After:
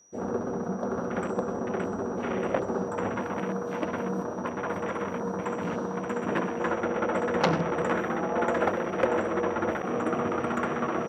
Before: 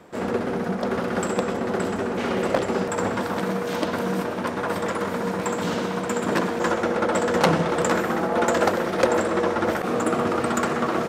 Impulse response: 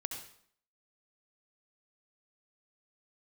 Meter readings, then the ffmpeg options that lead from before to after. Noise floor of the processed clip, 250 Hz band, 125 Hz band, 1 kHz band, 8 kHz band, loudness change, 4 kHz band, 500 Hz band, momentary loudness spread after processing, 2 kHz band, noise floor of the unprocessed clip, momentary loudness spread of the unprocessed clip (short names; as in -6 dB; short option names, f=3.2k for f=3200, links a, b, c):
-34 dBFS, -5.0 dB, -5.0 dB, -5.5 dB, -13.0 dB, -5.5 dB, -11.0 dB, -5.0 dB, 5 LU, -6.5 dB, -29 dBFS, 5 LU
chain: -filter_complex "[0:a]aeval=exprs='val(0)+0.0178*sin(2*PI*5800*n/s)':c=same,asplit=2[a][b];[1:a]atrim=start_sample=2205[c];[b][c]afir=irnorm=-1:irlink=0,volume=-18dB[d];[a][d]amix=inputs=2:normalize=0,afwtdn=0.0316,volume=-6dB"